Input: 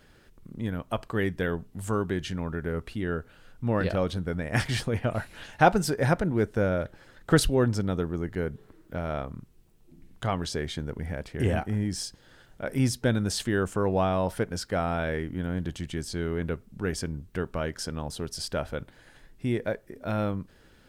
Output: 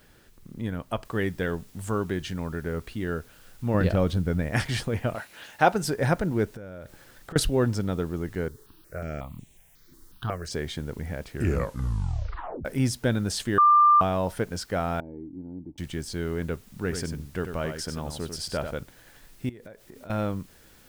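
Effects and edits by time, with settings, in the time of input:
1.05 noise floor step -66 dB -58 dB
3.74–4.51 low shelf 280 Hz +7.5 dB
5.14–5.81 HPF 610 Hz -> 200 Hz 6 dB/oct
6.45–7.36 compressor 12:1, threshold -36 dBFS
8.48–10.51 step phaser 5.5 Hz 680–4800 Hz
11.28 tape stop 1.37 s
13.58–14.01 bleep 1190 Hz -13.5 dBFS
15–15.78 vocal tract filter u
16.67–18.71 echo 94 ms -7.5 dB
19.49–20.1 compressor 16:1, threshold -40 dBFS

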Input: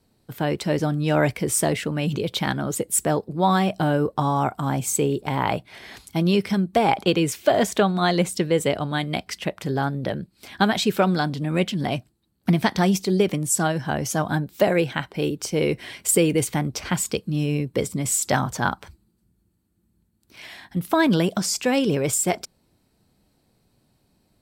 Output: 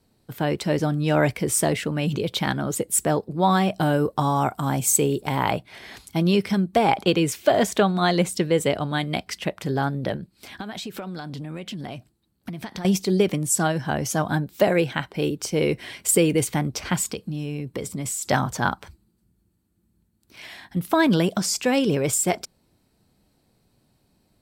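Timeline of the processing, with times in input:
3.8–5.51 high shelf 5600 Hz +7.5 dB
10.16–12.85 compressor 20:1, threshold -29 dBFS
17.1–18.3 compressor, threshold -25 dBFS

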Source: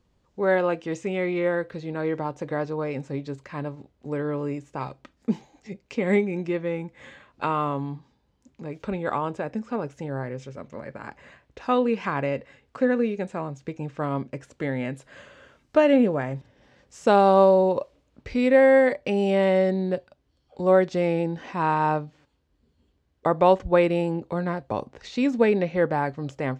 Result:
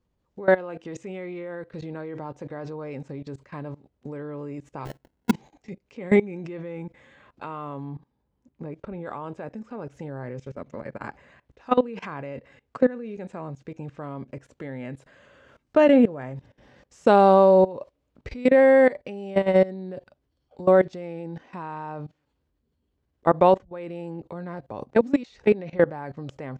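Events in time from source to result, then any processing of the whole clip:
4.85–5.31 sample-rate reducer 1200 Hz
7.84–9.02 high shelf 3200 Hz -> 2300 Hz -10.5 dB
23.65–24.35 fade in, from -13.5 dB
24.95–25.46 reverse
whole clip: high shelf 2100 Hz -4.5 dB; level quantiser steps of 20 dB; gain +5.5 dB

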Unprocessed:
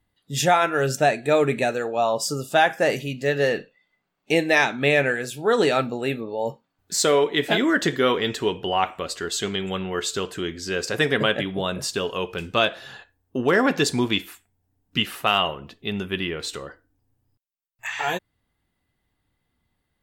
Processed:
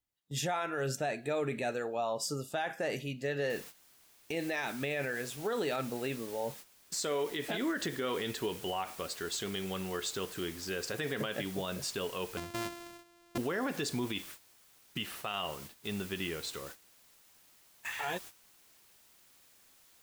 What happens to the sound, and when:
3.5 noise floor step -70 dB -41 dB
12.37–13.38 sample sorter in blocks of 128 samples
whole clip: gate -37 dBFS, range -13 dB; limiter -16 dBFS; gain -9 dB

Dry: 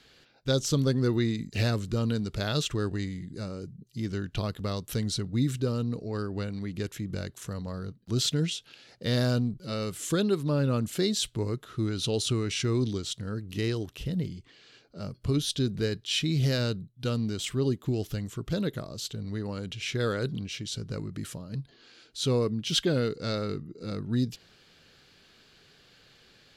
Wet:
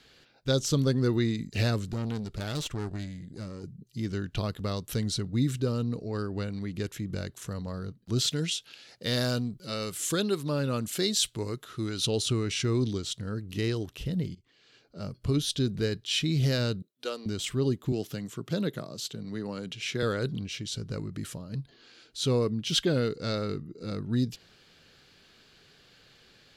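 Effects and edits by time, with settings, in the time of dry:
1.91–3.64 tube stage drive 27 dB, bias 0.65
8.3–12.07 tilt +1.5 dB/oct
14.35–15.02 fade in, from -17.5 dB
16.82–17.26 HPF 360 Hz 24 dB/oct
17.92–20.03 HPF 130 Hz 24 dB/oct

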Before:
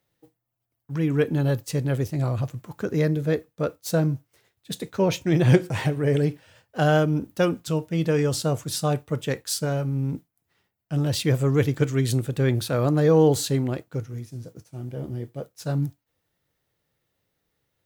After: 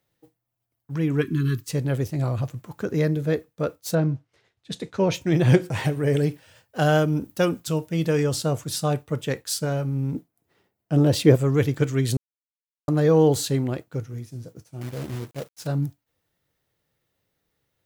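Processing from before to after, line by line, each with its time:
1.21–1.69 spectral delete 420–1000 Hz
3.94–5.13 LPF 3600 Hz -> 8900 Hz
5.84–8.24 high shelf 5700 Hz +6 dB
10.15–11.36 bell 390 Hz +10 dB 2.3 oct
12.17–12.88 mute
14.81–15.67 companded quantiser 4-bit

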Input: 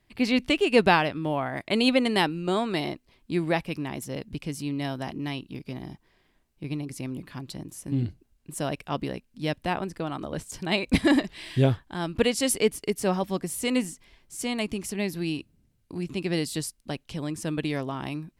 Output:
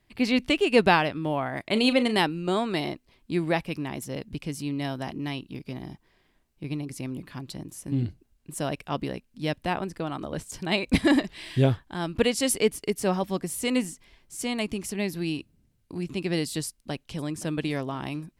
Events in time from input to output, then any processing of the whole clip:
1.64–2.19 doubler 37 ms -13 dB
16.66–17.2 echo throw 0.52 s, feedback 55%, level -17 dB

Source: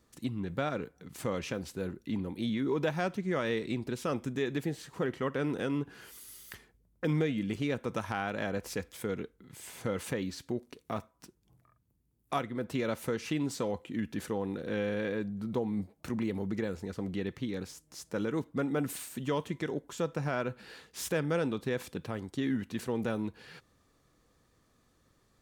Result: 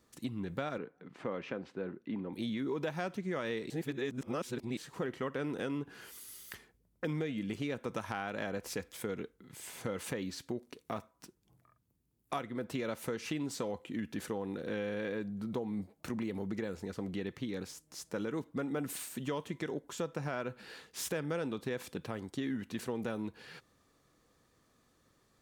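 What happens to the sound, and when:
0.78–2.33 BPF 170–2200 Hz
3.7–4.77 reverse
whole clip: low shelf 100 Hz -7.5 dB; compressor 2.5:1, threshold -34 dBFS

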